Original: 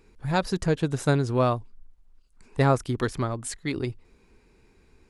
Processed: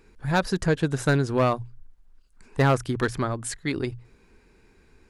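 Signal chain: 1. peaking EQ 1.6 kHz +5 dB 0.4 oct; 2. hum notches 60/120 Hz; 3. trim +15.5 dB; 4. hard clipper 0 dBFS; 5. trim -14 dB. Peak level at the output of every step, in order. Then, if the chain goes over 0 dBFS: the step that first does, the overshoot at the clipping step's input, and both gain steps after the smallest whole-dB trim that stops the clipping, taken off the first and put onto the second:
-9.0 dBFS, -8.5 dBFS, +7.0 dBFS, 0.0 dBFS, -14.0 dBFS; step 3, 7.0 dB; step 3 +8.5 dB, step 5 -7 dB

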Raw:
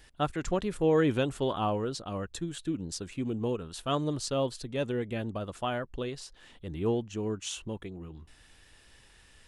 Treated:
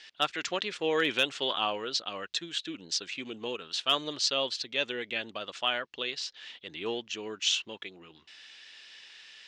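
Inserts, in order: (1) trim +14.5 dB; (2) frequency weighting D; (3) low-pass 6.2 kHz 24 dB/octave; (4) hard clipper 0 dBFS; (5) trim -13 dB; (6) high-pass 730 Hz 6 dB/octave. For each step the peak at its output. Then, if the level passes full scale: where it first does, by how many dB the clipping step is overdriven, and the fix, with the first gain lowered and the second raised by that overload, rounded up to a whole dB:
-1.0 dBFS, +3.5 dBFS, +3.5 dBFS, 0.0 dBFS, -13.0 dBFS, -11.5 dBFS; step 2, 3.5 dB; step 1 +10.5 dB, step 5 -9 dB

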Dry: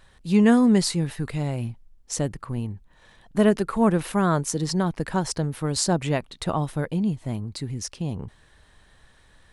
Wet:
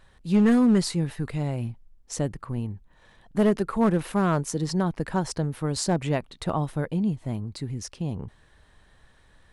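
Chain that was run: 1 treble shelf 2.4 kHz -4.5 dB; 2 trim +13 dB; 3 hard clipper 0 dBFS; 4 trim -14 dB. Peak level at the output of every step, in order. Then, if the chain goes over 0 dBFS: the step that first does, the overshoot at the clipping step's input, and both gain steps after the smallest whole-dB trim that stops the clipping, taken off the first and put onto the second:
-6.0 dBFS, +7.0 dBFS, 0.0 dBFS, -14.0 dBFS; step 2, 7.0 dB; step 2 +6 dB, step 4 -7 dB

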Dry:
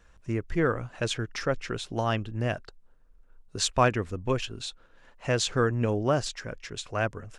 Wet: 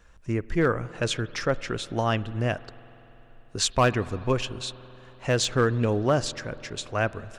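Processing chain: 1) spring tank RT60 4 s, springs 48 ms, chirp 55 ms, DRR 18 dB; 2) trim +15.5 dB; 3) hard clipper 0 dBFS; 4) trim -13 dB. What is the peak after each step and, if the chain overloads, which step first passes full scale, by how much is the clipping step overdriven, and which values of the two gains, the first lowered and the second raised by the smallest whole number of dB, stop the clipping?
-9.0 dBFS, +6.5 dBFS, 0.0 dBFS, -13.0 dBFS; step 2, 6.5 dB; step 2 +8.5 dB, step 4 -6 dB

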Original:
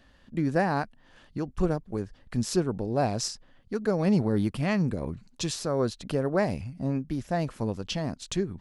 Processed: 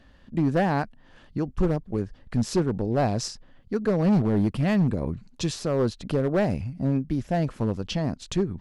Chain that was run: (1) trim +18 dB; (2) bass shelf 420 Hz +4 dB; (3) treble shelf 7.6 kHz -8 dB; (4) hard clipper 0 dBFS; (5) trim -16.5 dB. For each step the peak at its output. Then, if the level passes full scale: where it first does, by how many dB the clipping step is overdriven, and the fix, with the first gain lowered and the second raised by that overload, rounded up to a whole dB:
+6.0 dBFS, +8.0 dBFS, +8.0 dBFS, 0.0 dBFS, -16.5 dBFS; step 1, 8.0 dB; step 1 +10 dB, step 5 -8.5 dB

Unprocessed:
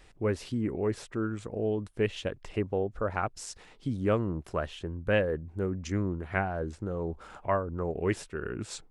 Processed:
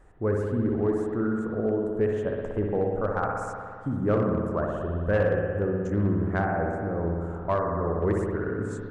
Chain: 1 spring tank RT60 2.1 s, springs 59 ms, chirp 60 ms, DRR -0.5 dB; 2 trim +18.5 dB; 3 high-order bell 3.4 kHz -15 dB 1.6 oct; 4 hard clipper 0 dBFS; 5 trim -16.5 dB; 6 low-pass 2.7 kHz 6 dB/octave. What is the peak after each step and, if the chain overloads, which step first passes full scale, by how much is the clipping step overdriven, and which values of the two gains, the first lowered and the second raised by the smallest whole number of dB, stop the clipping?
-12.5 dBFS, +6.0 dBFS, +5.5 dBFS, 0.0 dBFS, -16.5 dBFS, -16.5 dBFS; step 2, 5.5 dB; step 2 +12.5 dB, step 5 -10.5 dB

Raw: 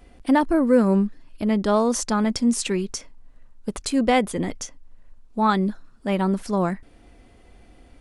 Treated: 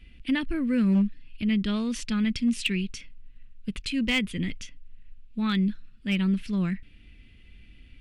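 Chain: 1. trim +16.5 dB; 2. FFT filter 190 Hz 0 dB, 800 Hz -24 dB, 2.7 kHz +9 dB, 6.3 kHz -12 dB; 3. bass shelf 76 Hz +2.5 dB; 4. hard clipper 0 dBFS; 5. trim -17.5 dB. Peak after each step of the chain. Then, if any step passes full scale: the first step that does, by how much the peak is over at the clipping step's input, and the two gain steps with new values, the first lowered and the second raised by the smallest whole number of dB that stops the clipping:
+9.5 dBFS, +7.0 dBFS, +7.0 dBFS, 0.0 dBFS, -17.5 dBFS; step 1, 7.0 dB; step 1 +9.5 dB, step 5 -10.5 dB

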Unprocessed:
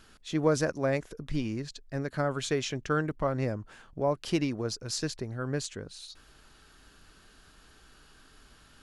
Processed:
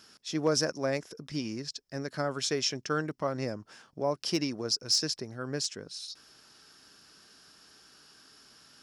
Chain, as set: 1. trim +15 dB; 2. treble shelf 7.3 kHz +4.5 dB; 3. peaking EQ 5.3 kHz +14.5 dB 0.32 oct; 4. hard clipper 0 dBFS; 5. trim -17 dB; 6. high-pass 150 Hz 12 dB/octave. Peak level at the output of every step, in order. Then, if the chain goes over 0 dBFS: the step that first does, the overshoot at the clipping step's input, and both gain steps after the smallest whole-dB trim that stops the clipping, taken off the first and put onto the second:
+3.0 dBFS, +3.0 dBFS, +4.0 dBFS, 0.0 dBFS, -17.0 dBFS, -15.0 dBFS; step 1, 4.0 dB; step 1 +11 dB, step 5 -13 dB

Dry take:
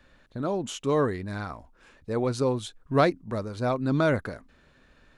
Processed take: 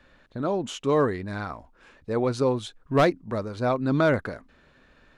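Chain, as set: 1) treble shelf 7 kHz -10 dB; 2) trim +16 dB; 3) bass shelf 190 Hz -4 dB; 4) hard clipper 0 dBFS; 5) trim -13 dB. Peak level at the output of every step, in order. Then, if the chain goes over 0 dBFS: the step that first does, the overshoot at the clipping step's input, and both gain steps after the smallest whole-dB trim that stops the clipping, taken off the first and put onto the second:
-8.5 dBFS, +7.5 dBFS, +7.5 dBFS, 0.0 dBFS, -13.0 dBFS; step 2, 7.5 dB; step 2 +8 dB, step 5 -5 dB

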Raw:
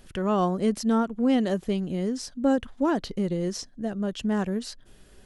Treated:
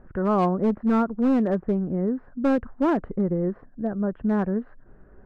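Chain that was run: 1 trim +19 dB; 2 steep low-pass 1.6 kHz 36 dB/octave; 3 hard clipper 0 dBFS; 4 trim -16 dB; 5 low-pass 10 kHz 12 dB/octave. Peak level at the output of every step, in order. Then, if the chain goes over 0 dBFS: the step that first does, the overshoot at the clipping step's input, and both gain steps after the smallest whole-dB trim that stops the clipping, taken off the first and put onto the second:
+6.5 dBFS, +6.5 dBFS, 0.0 dBFS, -16.0 dBFS, -16.0 dBFS; step 1, 6.5 dB; step 1 +12 dB, step 4 -9 dB

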